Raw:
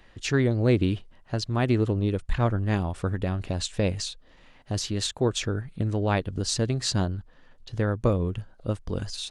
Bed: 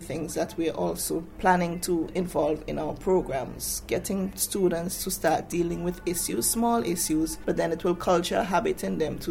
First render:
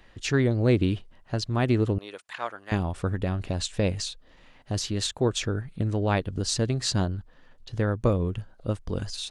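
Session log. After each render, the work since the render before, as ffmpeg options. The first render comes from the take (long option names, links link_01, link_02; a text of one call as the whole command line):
ffmpeg -i in.wav -filter_complex "[0:a]asettb=1/sr,asplit=3[link_01][link_02][link_03];[link_01]atrim=end=1.984[link_04];[link_02]atrim=start=1.98:end=2.72,asetpts=PTS-STARTPTS,afade=type=in:duration=0.004:curve=qsin,afade=type=out:start_time=0.736:duration=0.004:curve=qsin,highpass=820[link_05];[link_03]atrim=start=2.716[link_06];[link_04][link_05]acrossfade=duration=0.004:curve1=hsin:curve2=qsin[link_07];[link_07][link_06]acrossfade=duration=0.004:curve1=qsin:curve2=hsin" out.wav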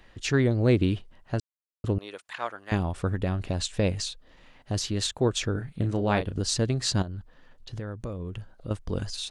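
ffmpeg -i in.wav -filter_complex "[0:a]asettb=1/sr,asplit=3[link_01][link_02][link_03];[link_01]atrim=end=5.524[link_04];[link_02]atrim=start=5.52:end=6.36,asetpts=PTS-STARTPTS,afade=type=in:duration=0.004:curve=qsin,afade=type=out:start_time=0.836:duration=0.004:curve=qsin,asplit=2[link_05][link_06];[link_06]adelay=34,volume=-8dB[link_07];[link_05][link_07]amix=inputs=2:normalize=0,atrim=end_sample=37044[link_08];[link_03]atrim=start=6.356[link_09];[link_04][link_08]acrossfade=duration=0.004:curve1=hsin:curve2=qsin[link_10];[link_10][link_09]acrossfade=duration=0.004:curve1=qsin:curve2=hsin,asettb=1/sr,asplit=3[link_11][link_12][link_13];[link_11]atrim=end=7.024[link_14];[link_12]atrim=start=7.02:end=8.71,asetpts=PTS-STARTPTS,afade=type=in:duration=0.004:curve=qsin,afade=type=out:start_time=1.686:duration=0.004:curve=qsin,acompressor=threshold=-31dB:ratio=6:attack=3.2:release=140:knee=1:detection=peak[link_15];[link_13]atrim=start=8.706[link_16];[link_14][link_15]acrossfade=duration=0.004:curve1=hsin:curve2=qsin[link_17];[link_17][link_16]acrossfade=duration=0.004:curve1=qsin:curve2=hsin,asplit=3[link_18][link_19][link_20];[link_18]atrim=end=1.4,asetpts=PTS-STARTPTS,afade=type=out:start_time=1.396:duration=0.004:curve=hsin[link_21];[link_19]atrim=start=1.4:end=1.84,asetpts=PTS-STARTPTS,volume=0[link_22];[link_20]atrim=start=1.84,asetpts=PTS-STARTPTS,afade=type=in:duration=0.004:curve=hsin[link_23];[link_21][link_22][link_23]concat=n=3:v=0:a=1" out.wav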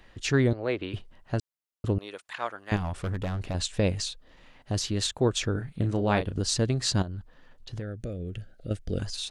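ffmpeg -i in.wav -filter_complex "[0:a]asettb=1/sr,asplit=3[link_01][link_02][link_03];[link_01]atrim=end=0.534[link_04];[link_02]atrim=start=0.53:end=0.94,asetpts=PTS-STARTPTS,afade=type=in:duration=0.004:curve=qsin,afade=type=out:start_time=0.406:duration=0.004:curve=qsin,acrossover=split=430 3900:gain=0.126 1 0.126[link_05][link_06][link_07];[link_05][link_06][link_07]amix=inputs=3:normalize=0[link_08];[link_03]atrim=start=0.936[link_09];[link_04][link_08]acrossfade=duration=0.004:curve1=hsin:curve2=qsin[link_10];[link_10][link_09]acrossfade=duration=0.004:curve1=qsin:curve2=hsin,asettb=1/sr,asplit=3[link_11][link_12][link_13];[link_11]atrim=end=2.764[link_14];[link_12]atrim=start=2.76:end=3.55,asetpts=PTS-STARTPTS,afade=type=in:duration=0.004:curve=qsin,afade=type=out:start_time=0.786:duration=0.004:curve=qsin,asoftclip=type=hard:threshold=-27dB[link_15];[link_13]atrim=start=3.546[link_16];[link_14][link_15]acrossfade=duration=0.004:curve1=hsin:curve2=qsin[link_17];[link_17][link_16]acrossfade=duration=0.004:curve1=qsin:curve2=hsin,asettb=1/sr,asplit=3[link_18][link_19][link_20];[link_18]atrim=end=7.824[link_21];[link_19]atrim=start=7.82:end=9,asetpts=PTS-STARTPTS,afade=type=in:duration=0.004:curve=qsin,afade=type=out:start_time=1.176:duration=0.004:curve=qsin,asuperstop=centerf=1000:order=4:qfactor=1.4[link_22];[link_20]atrim=start=8.996[link_23];[link_21][link_22]acrossfade=duration=0.004:curve1=hsin:curve2=qsin[link_24];[link_24][link_23]acrossfade=duration=0.004:curve1=qsin:curve2=hsin" out.wav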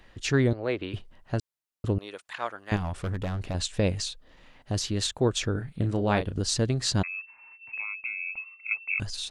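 ffmpeg -i in.wav -filter_complex "[0:a]asettb=1/sr,asplit=3[link_01][link_02][link_03];[link_01]atrim=end=5.564[link_04];[link_02]atrim=start=5.56:end=6.03,asetpts=PTS-STARTPTS,afade=type=in:duration=0.004:curve=qsin,afade=type=out:start_time=0.466:duration=0.004:curve=qsin,bandreject=frequency=6300:width=12[link_05];[link_03]atrim=start=6.026[link_06];[link_04][link_05]acrossfade=duration=0.004:curve1=hsin:curve2=qsin[link_07];[link_07][link_06]acrossfade=duration=0.004:curve1=qsin:curve2=hsin,asettb=1/sr,asplit=3[link_08][link_09][link_10];[link_08]atrim=end=7.034[link_11];[link_09]atrim=start=7.03:end=9,asetpts=PTS-STARTPTS,afade=type=in:duration=0.004:curve=qsin,afade=type=out:start_time=1.966:duration=0.004:curve=qsin,lowpass=frequency=2300:width_type=q:width=0.5098,lowpass=frequency=2300:width_type=q:width=0.6013,lowpass=frequency=2300:width_type=q:width=0.9,lowpass=frequency=2300:width_type=q:width=2.563,afreqshift=-2700[link_12];[link_10]atrim=start=8.996[link_13];[link_11][link_12]acrossfade=duration=0.004:curve1=hsin:curve2=qsin[link_14];[link_14][link_13]acrossfade=duration=0.004:curve1=qsin:curve2=hsin" out.wav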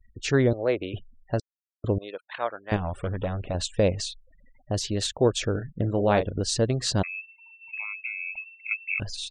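ffmpeg -i in.wav -af "afftfilt=real='re*gte(hypot(re,im),0.00631)':imag='im*gte(hypot(re,im),0.00631)':win_size=1024:overlap=0.75,equalizer=frequency=560:width_type=o:width=0.89:gain=7" out.wav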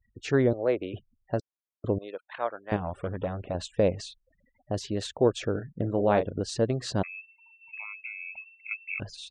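ffmpeg -i in.wav -af "highpass=frequency=160:poles=1,highshelf=frequency=2400:gain=-11" out.wav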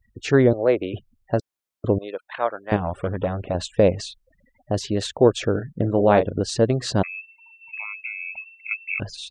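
ffmpeg -i in.wav -af "volume=7dB" out.wav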